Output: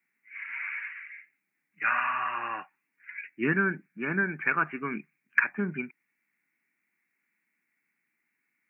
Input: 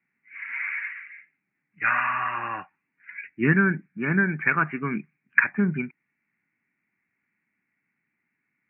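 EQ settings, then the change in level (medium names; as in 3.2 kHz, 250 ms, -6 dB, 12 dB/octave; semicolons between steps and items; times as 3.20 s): dynamic bell 2 kHz, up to -6 dB, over -38 dBFS, Q 2.8; tilt EQ +3.5 dB/octave; peaking EQ 340 Hz +6.5 dB 2.4 oct; -5.0 dB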